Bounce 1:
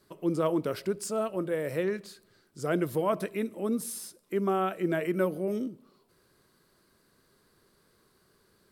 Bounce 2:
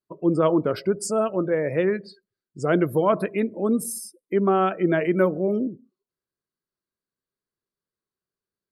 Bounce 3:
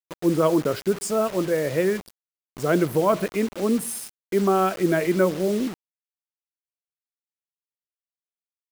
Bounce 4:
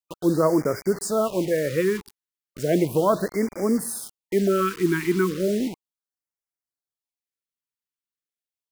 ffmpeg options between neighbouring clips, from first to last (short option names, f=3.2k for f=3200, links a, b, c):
-af "afftdn=nr=35:nf=-45,volume=7.5dB"
-af "acrusher=bits=5:mix=0:aa=0.000001"
-af "afftfilt=real='re*(1-between(b*sr/1024,590*pow(3400/590,0.5+0.5*sin(2*PI*0.35*pts/sr))/1.41,590*pow(3400/590,0.5+0.5*sin(2*PI*0.35*pts/sr))*1.41))':imag='im*(1-between(b*sr/1024,590*pow(3400/590,0.5+0.5*sin(2*PI*0.35*pts/sr))/1.41,590*pow(3400/590,0.5+0.5*sin(2*PI*0.35*pts/sr))*1.41))':win_size=1024:overlap=0.75"